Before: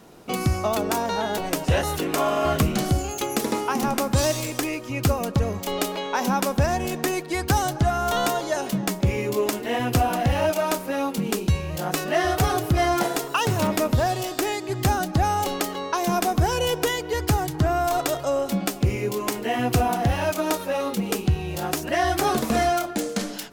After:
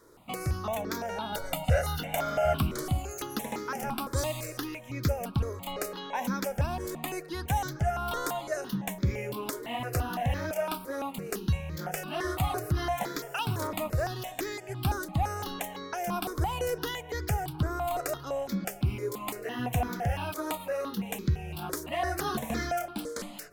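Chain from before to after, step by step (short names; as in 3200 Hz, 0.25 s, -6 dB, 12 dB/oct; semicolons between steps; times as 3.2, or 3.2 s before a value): 1.32–2.53 comb 1.4 ms, depth 86%; step phaser 5.9 Hz 740–2800 Hz; gain -5.5 dB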